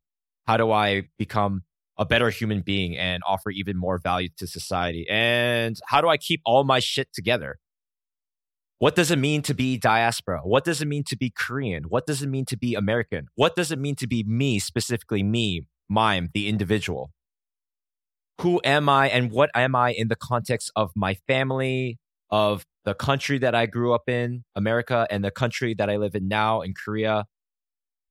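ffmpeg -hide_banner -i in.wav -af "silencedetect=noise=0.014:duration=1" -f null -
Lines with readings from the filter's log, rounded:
silence_start: 7.53
silence_end: 8.81 | silence_duration: 1.28
silence_start: 17.06
silence_end: 18.39 | silence_duration: 1.32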